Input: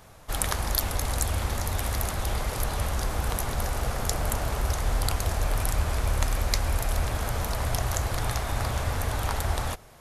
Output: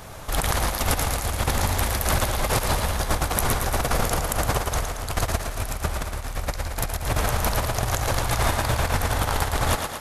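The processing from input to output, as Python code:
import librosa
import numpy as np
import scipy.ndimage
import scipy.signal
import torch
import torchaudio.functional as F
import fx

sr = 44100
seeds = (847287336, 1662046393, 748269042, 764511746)

y = fx.over_compress(x, sr, threshold_db=-30.0, ratio=-0.5)
y = fx.echo_thinned(y, sr, ms=113, feedback_pct=59, hz=220.0, wet_db=-5.0)
y = y * 10.0 ** (6.5 / 20.0)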